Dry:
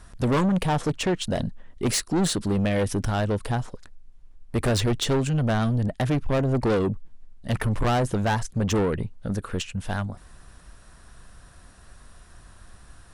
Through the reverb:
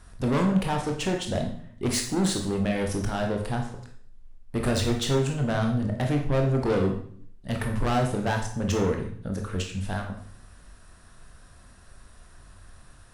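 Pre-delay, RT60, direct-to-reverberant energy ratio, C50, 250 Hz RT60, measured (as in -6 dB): 18 ms, 0.60 s, 2.0 dB, 6.5 dB, 0.75 s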